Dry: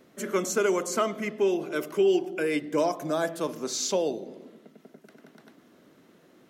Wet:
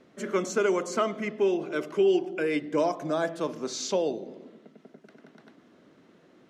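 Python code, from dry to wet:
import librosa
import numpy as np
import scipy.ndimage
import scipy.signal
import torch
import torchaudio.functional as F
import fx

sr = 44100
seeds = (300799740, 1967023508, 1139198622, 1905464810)

y = fx.air_absorb(x, sr, metres=74.0)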